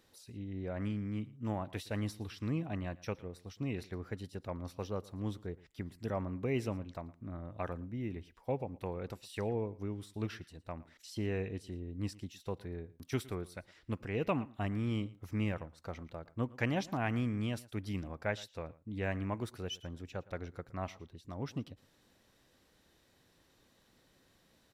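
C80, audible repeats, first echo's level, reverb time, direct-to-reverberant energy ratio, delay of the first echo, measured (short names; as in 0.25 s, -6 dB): none, 1, -20.5 dB, none, none, 0.114 s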